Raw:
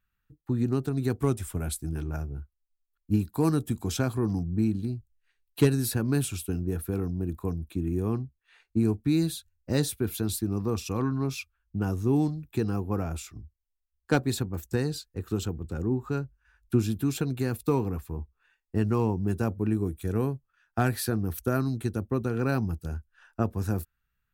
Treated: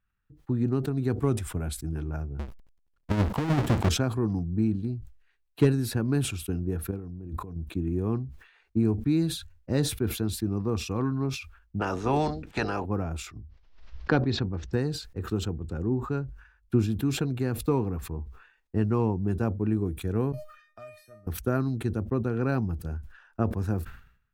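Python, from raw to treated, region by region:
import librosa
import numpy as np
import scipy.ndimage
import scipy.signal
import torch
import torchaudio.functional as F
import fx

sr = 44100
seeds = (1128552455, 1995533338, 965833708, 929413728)

y = fx.chain(x, sr, fx.halfwave_hold(),
    fx.over_compress(threshold_db=-22.0, ratio=-0.5),
    fx.doppler_dist(depth_ms=0.64), at=(2.39, 3.89))
y = fx.chain(y, sr, fx.low_shelf(hz=470.0, db=4.5),
    fx.over_compress(threshold_db=-38.0, ratio=-1.0), at=(6.91, 7.56))
y = fx.spec_clip(y, sr, under_db=26, at=(11.79, 12.84), fade=0.02)
y = fx.lowpass(y, sr, hz=6300.0, slope=12, at=(11.79, 12.84), fade=0.02)
y = fx.notch(y, sr, hz=1100.0, q=12.0, at=(11.79, 12.84), fade=0.02)
y = fx.chain(y, sr, fx.steep_lowpass(hz=5500.0, slope=36),
    fx.pre_swell(db_per_s=78.0), at=(13.38, 14.73))
y = fx.chain(y, sr, fx.comb_fb(f0_hz=610.0, decay_s=0.29, harmonics='all', damping=0.0, mix_pct=100),
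    fx.band_squash(depth_pct=70), at=(20.32, 21.27))
y = fx.lowpass(y, sr, hz=2200.0, slope=6)
y = fx.sustainer(y, sr, db_per_s=98.0)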